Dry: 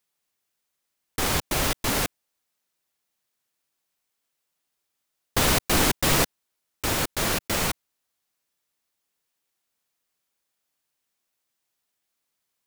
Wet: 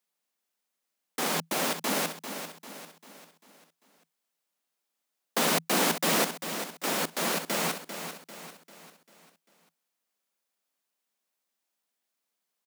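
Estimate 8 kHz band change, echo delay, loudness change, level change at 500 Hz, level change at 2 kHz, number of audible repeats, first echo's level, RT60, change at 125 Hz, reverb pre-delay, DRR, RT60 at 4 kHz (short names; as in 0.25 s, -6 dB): -4.0 dB, 0.395 s, -4.5 dB, -1.5 dB, -3.5 dB, 4, -9.5 dB, none, -11.0 dB, none, none, none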